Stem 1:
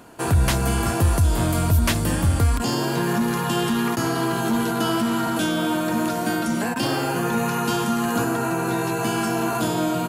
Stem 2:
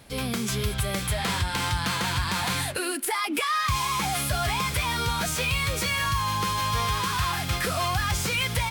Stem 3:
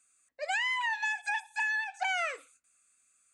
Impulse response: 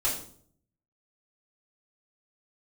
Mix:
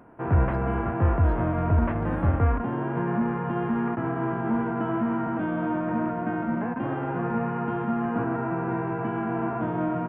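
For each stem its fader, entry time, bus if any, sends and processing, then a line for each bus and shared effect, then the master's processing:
−2.0 dB, 0.00 s, no send, spectral envelope flattened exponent 0.6; Gaussian smoothing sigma 5.9 samples
muted
−18.0 dB, 0.00 s, no send, brick-wall band-stop 1,700–8,800 Hz; leveller curve on the samples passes 1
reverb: not used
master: no processing

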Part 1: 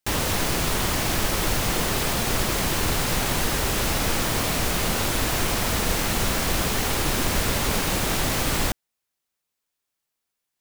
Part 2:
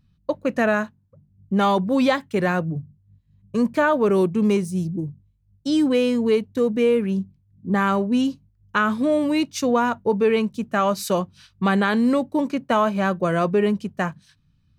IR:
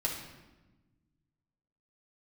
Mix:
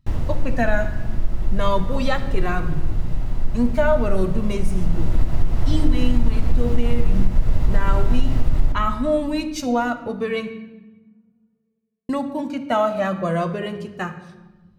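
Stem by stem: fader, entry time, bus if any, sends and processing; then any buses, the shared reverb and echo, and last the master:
0:04.58 −11 dB → 0:05.22 −3 dB, 0.00 s, send −15 dB, spectral tilt −4.5 dB per octave; automatic ducking −9 dB, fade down 0.60 s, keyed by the second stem
−0.5 dB, 0.00 s, muted 0:10.51–0:12.09, send −7 dB, flanger whose copies keep moving one way falling 0.34 Hz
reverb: on, RT60 1.1 s, pre-delay 3 ms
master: downward compressor 6 to 1, threshold −9 dBFS, peak gain reduction 8 dB

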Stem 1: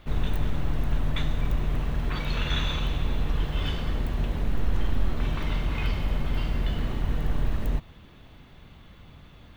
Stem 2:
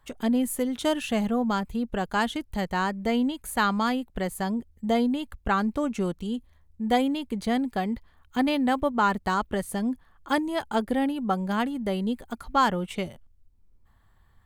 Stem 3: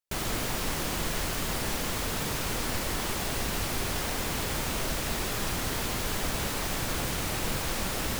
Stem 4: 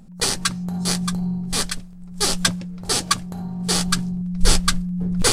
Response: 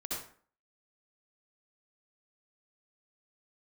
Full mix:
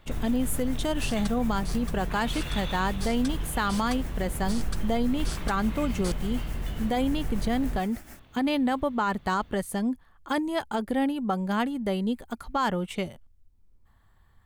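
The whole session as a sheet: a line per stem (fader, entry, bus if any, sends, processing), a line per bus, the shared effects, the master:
−5.5 dB, 0.00 s, no send, no processing
0.0 dB, 0.00 s, no send, no processing
−11.5 dB, 0.00 s, no send, amplitude tremolo 6.9 Hz, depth 71%; phaser with its sweep stopped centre 700 Hz, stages 8
−19.0 dB, 0.80 s, no send, no processing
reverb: not used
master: brickwall limiter −17 dBFS, peak gain reduction 7.5 dB

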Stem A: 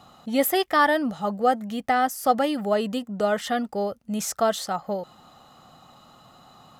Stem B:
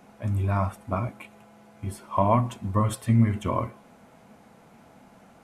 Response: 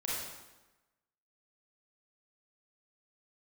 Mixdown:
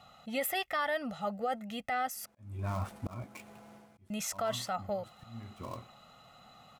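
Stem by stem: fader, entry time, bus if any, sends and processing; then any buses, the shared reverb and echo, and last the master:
−9.5 dB, 0.00 s, muted 0:02.26–0:04.10, no send, parametric band 2,400 Hz +8.5 dB 1 octave; comb filter 1.5 ms, depth 64%
−1.0 dB, 2.15 s, no send, gap after every zero crossing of 0.1 ms; volume swells 409 ms; automatic ducking −15 dB, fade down 0.35 s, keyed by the first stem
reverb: not used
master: brickwall limiter −24 dBFS, peak gain reduction 10 dB

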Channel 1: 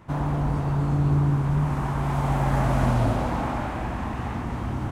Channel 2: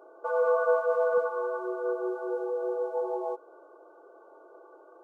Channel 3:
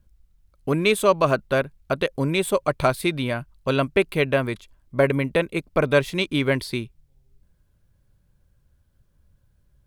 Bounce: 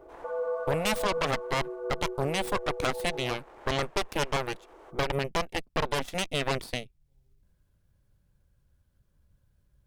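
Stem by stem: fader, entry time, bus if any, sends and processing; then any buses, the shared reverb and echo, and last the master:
0:01.59 −10 dB → 0:01.87 −22.5 dB → 0:02.90 −22.5 dB → 0:03.68 −11 dB, 0.00 s, bus A, no send, high-pass filter 420 Hz 24 dB per octave
−5.0 dB, 0.00 s, no bus, no send, parametric band 160 Hz +14.5 dB 2.8 octaves
+1.0 dB, 0.00 s, bus A, no send, no processing
bus A: 0.0 dB, harmonic generator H 5 −27 dB, 6 −16 dB, 7 −12 dB, 8 −7 dB, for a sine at −3 dBFS; brickwall limiter −7 dBFS, peak gain reduction 6.5 dB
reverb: not used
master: downward compressor 1.5 to 1, threshold −41 dBFS, peak gain reduction 10 dB

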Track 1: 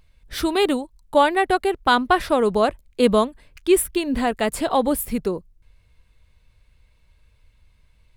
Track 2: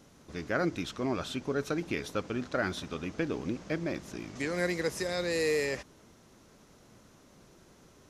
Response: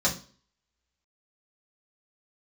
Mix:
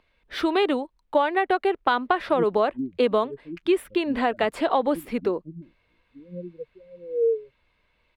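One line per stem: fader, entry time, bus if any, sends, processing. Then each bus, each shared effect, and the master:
+2.0 dB, 0.00 s, no send, three-way crossover with the lows and the highs turned down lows −18 dB, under 250 Hz, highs −20 dB, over 3,800 Hz
+2.0 dB, 1.75 s, no send, low-pass filter 1,400 Hz; low-shelf EQ 220 Hz +11 dB; every bin expanded away from the loudest bin 4 to 1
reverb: not used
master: downward compressor 6 to 1, threshold −17 dBFS, peak gain reduction 8.5 dB

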